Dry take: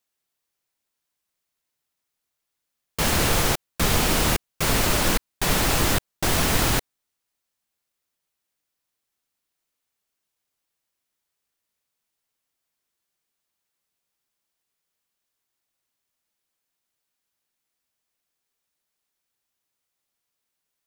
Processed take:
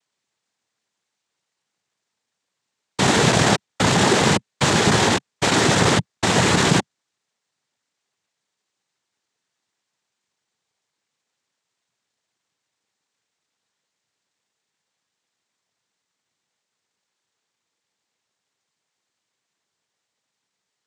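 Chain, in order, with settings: square wave that keeps the level; noise-vocoded speech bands 6; trim +2 dB

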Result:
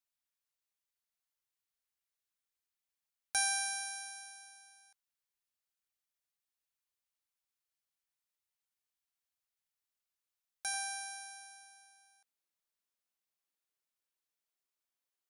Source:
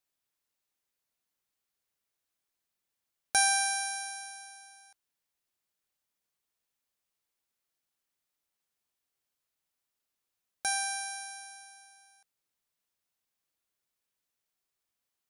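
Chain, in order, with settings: peaking EQ 270 Hz -12.5 dB 2.2 oct, from 10.74 s 75 Hz; trim -6 dB

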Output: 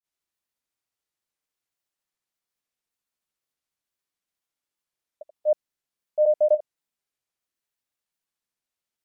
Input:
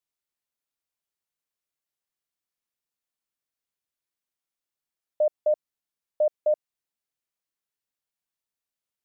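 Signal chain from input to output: granulator 165 ms, grains 14 per s, pitch spread up and down by 0 st; trim +4.5 dB

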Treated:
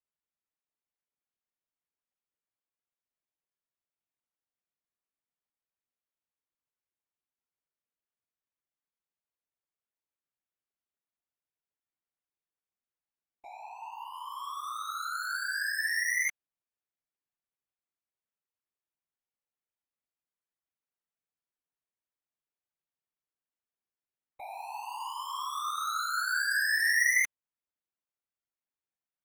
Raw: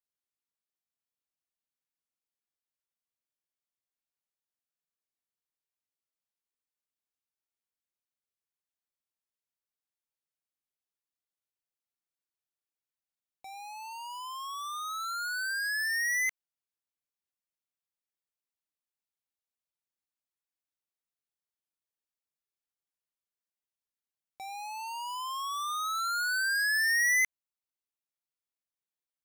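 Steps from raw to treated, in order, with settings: local Wiener filter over 9 samples; whisper effect

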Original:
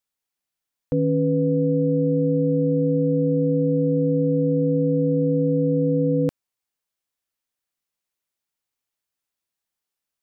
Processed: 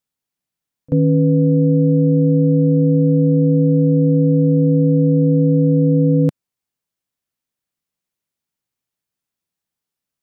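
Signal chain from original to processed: peaking EQ 150 Hz +9.5 dB 2.1 oct; on a send: reverse echo 36 ms -24 dB

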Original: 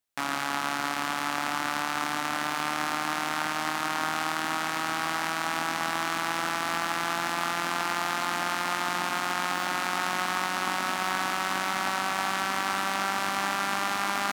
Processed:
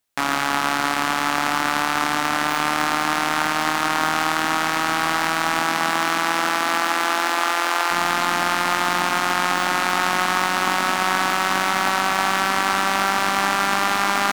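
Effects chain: tracing distortion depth 0.046 ms; 5.60–7.90 s: high-pass 120 Hz -> 370 Hz 24 dB/octave; trim +8 dB

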